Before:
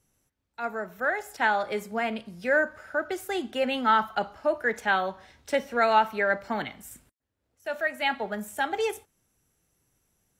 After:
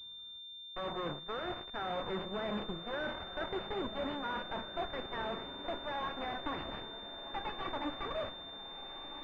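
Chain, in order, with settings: speed glide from 73% -> 152%; reverse; compressor 16:1, threshold -35 dBFS, peak gain reduction 19.5 dB; reverse; limiter -31.5 dBFS, peak gain reduction 7 dB; added harmonics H 8 -8 dB, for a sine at -31 dBFS; on a send: diffused feedback echo 1.527 s, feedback 55%, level -10 dB; on the sum: pulse-width modulation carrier 3600 Hz; gain +1.5 dB

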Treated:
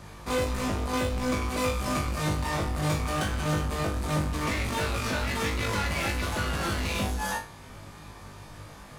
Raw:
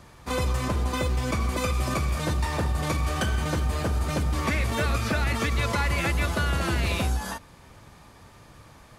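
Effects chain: flange 0.58 Hz, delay 3.3 ms, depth 9.3 ms, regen +89%; soft clip -34 dBFS, distortion -9 dB; flutter echo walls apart 3.4 m, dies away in 0.3 s; gain +7 dB

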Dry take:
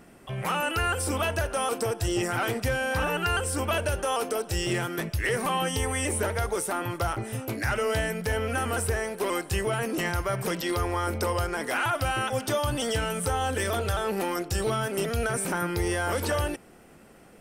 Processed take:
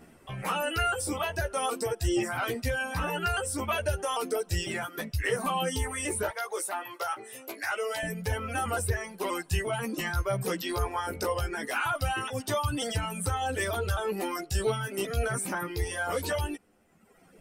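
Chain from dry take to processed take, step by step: 6.29–8.03 HPF 520 Hz 12 dB/oct; reverb removal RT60 1.4 s; chorus voices 2, 0.23 Hz, delay 13 ms, depth 3.1 ms; gain +1.5 dB

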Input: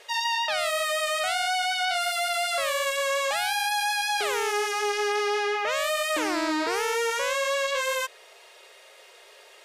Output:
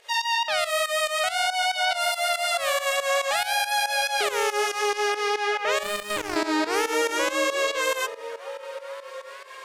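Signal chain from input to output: delay with a stepping band-pass 0.426 s, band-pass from 210 Hz, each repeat 0.7 oct, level -5 dB; 5.83–6.36 power-law curve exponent 2; pump 140 bpm, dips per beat 2, -15 dB, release 0.142 s; gain +3 dB

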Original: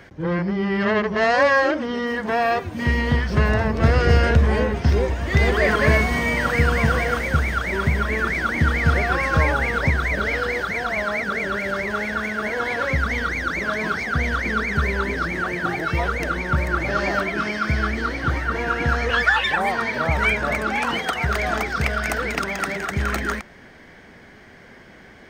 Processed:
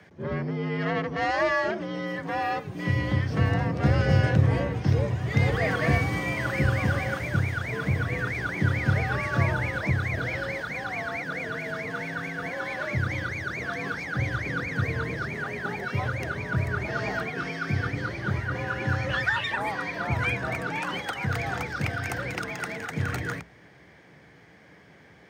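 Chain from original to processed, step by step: octaver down 1 oct, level +1 dB; bell 180 Hz -6 dB 0.42 oct; frequency shift +60 Hz; gain -8 dB

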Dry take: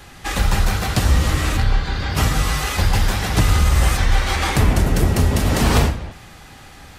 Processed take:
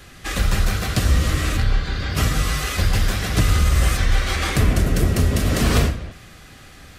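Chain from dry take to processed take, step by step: bell 870 Hz -13.5 dB 0.26 oct; gain -1.5 dB

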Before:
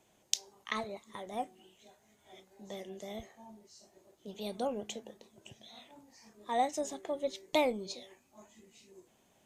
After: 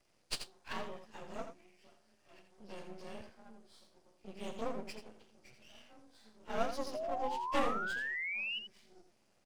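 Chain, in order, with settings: inharmonic rescaling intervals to 91%; half-wave rectifier; painted sound rise, 6.94–8.59, 600–3000 Hz -40 dBFS; echo 83 ms -8.5 dB; gain +1 dB

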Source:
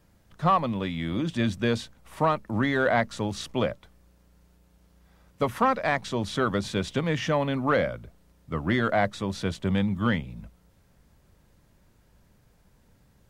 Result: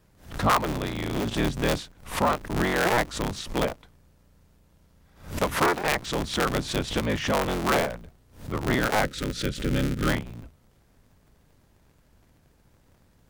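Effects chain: cycle switcher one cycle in 3, inverted; spectral gain 9.03–10.08, 590–1200 Hz -11 dB; backwards sustainer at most 130 dB/s

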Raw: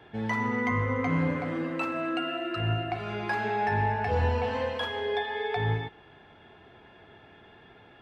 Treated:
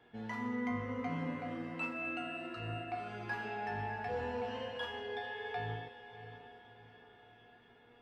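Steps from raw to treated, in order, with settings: bell 85 Hz -12.5 dB 0.22 oct; resonator 240 Hz, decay 0.58 s, harmonics all, mix 90%; diffused feedback echo 0.665 s, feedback 42%, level -12 dB; gain +5 dB

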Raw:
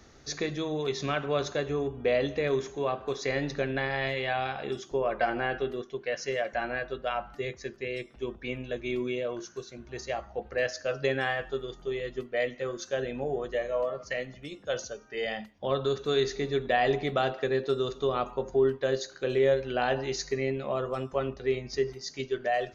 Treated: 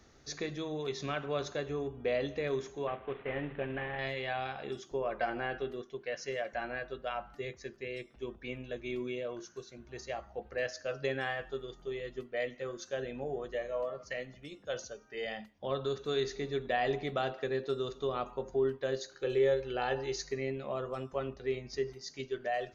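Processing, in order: 2.87–3.99 CVSD 16 kbps; 19.15–20.22 comb 2.3 ms, depth 49%; gain -6 dB

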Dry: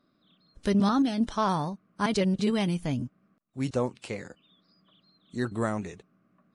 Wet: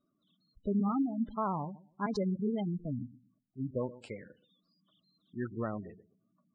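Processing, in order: in parallel at -11 dB: sample gate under -29.5 dBFS; on the sum: darkening echo 0.124 s, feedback 22%, low-pass 1800 Hz, level -17 dB; vibrato 2.9 Hz 20 cents; spectral gate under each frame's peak -15 dB strong; gain -8.5 dB

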